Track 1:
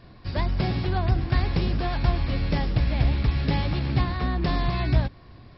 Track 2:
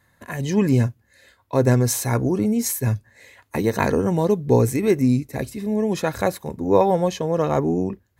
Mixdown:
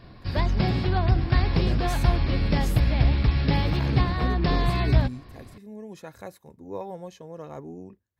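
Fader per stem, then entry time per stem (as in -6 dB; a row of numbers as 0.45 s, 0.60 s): +1.5 dB, -18.5 dB; 0.00 s, 0.00 s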